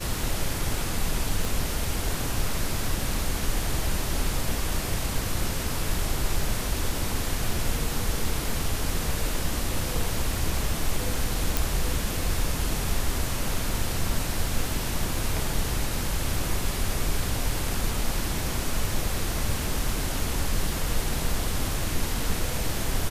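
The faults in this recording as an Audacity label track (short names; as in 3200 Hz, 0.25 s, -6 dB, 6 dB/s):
1.450000	1.450000	pop
11.570000	11.570000	pop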